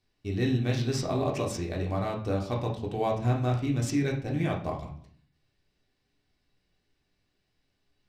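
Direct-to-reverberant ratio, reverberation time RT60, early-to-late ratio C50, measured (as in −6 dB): −1.5 dB, 0.55 s, 7.5 dB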